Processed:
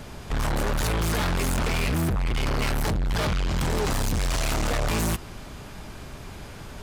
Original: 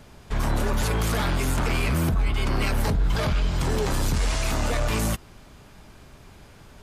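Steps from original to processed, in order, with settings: soft clip -31 dBFS, distortion -7 dB; gain +8.5 dB

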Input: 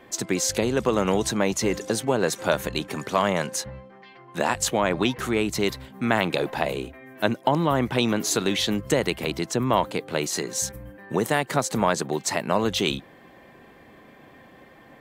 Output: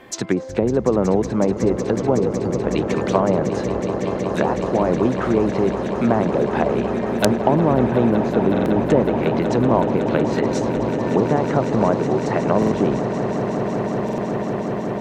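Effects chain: treble ducked by the level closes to 760 Hz, closed at -20.5 dBFS; spectral delete 2.15–2.62, 500–4400 Hz; swelling echo 0.185 s, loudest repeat 8, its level -12.5 dB; wrapped overs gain 6.5 dB; stuck buffer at 8.52/12.58/14.04, samples 2048, times 2; gain +5.5 dB

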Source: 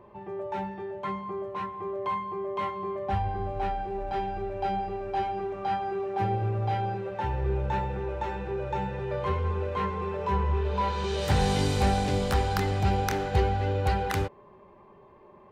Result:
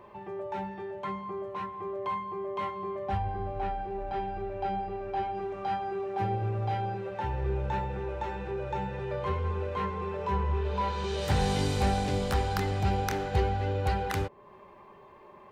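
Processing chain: 3.17–5.35 high shelf 5800 Hz -12 dB; mismatched tape noise reduction encoder only; gain -2.5 dB

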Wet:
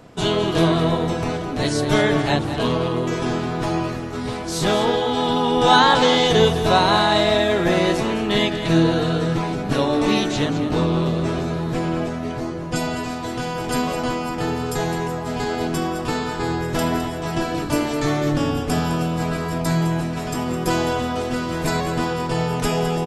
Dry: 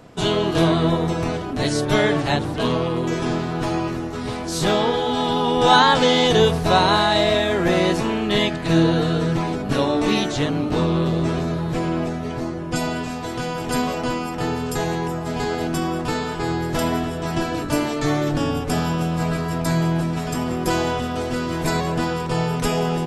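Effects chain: echo 0.21 s -10.5 dB

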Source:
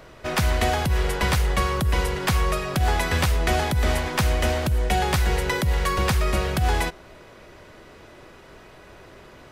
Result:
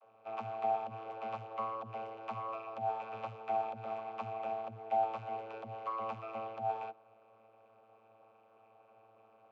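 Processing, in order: vowel filter a; notch comb 330 Hz; vocoder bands 32, saw 111 Hz; gain -2 dB

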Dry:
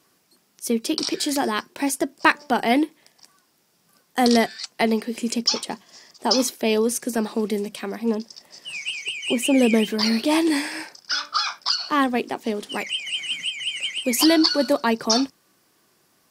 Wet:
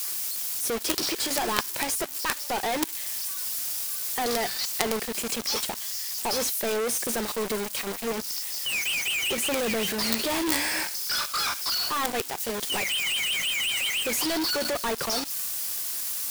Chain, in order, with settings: switching spikes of -14.5 dBFS; bell 260 Hz -13.5 dB 0.48 oct; de-hum 146 Hz, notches 2; level quantiser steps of 12 dB; companded quantiser 2-bit; gain -1 dB

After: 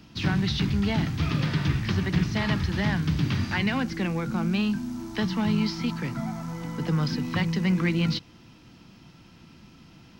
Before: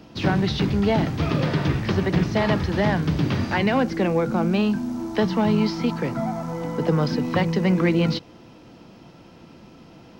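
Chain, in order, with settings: bell 540 Hz -14 dB 1.7 oct

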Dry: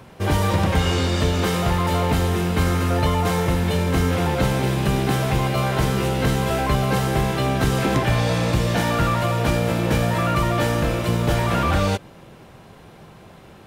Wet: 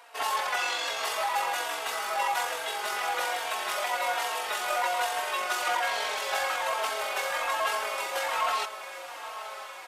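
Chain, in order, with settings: HPF 720 Hz 24 dB/oct; wide varispeed 0.927×; in parallel at -8 dB: soft clip -29.5 dBFS, distortion -9 dB; on the sum: granular stretch 0.67×, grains 44 ms; on a send: diffused feedback echo 1.011 s, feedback 70%, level -13 dB; on the sum: endless flanger 3.8 ms -1.2 Hz

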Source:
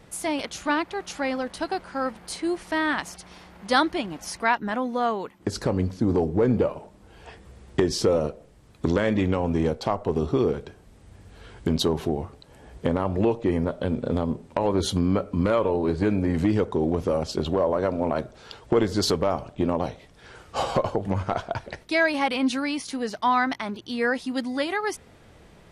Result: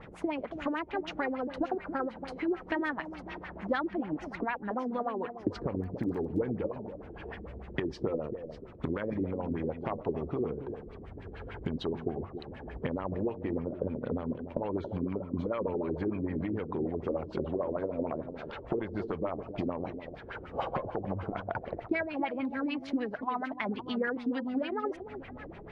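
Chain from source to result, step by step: compressor 12:1, threshold -33 dBFS, peak gain reduction 18.5 dB; echo with dull and thin repeats by turns 0.279 s, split 820 Hz, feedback 57%, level -9 dB; LFO low-pass sine 6.7 Hz 310–2700 Hz; 5.69–6.38 crackle 13/s -46 dBFS; gain +1.5 dB

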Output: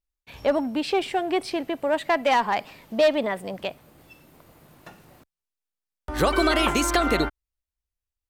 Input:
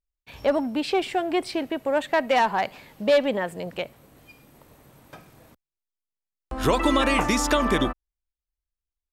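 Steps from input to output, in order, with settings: speed glide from 99% -> 121%

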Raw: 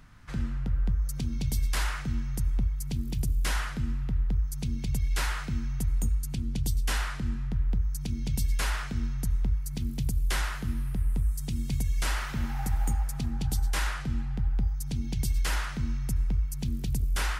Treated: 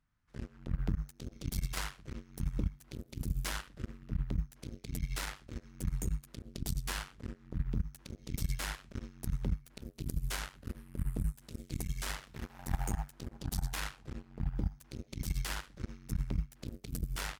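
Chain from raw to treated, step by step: added harmonics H 3 -9 dB, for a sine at -17.5 dBFS; outdoor echo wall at 190 m, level -26 dB; gain -2 dB

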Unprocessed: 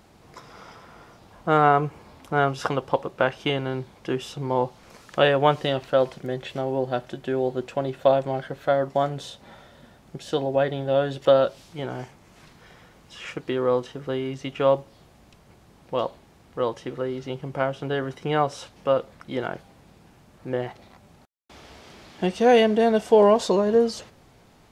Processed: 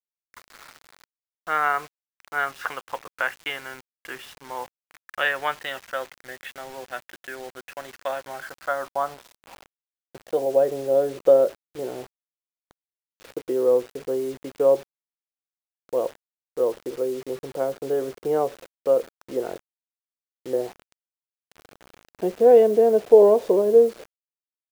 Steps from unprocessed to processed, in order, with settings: band-pass sweep 1800 Hz -> 450 Hz, 8.07–10.77; requantised 8-bit, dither none; gain +5 dB

